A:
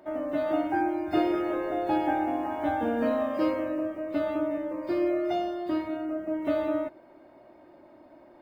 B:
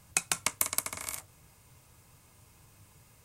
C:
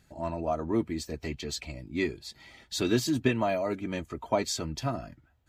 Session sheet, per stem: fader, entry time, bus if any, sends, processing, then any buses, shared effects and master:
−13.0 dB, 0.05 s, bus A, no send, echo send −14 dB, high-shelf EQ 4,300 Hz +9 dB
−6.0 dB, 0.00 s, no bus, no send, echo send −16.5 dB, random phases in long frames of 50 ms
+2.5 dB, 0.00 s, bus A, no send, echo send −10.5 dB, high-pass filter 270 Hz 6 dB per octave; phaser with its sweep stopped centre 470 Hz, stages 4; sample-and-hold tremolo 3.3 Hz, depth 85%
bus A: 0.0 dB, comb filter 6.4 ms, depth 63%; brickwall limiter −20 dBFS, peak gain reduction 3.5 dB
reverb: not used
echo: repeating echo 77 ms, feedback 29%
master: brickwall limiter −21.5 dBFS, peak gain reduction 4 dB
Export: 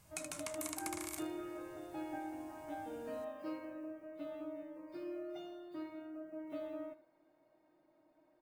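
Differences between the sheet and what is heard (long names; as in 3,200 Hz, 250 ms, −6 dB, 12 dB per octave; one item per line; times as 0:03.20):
stem A −13.0 dB → −20.5 dB
stem B: missing random phases in long frames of 50 ms
stem C: muted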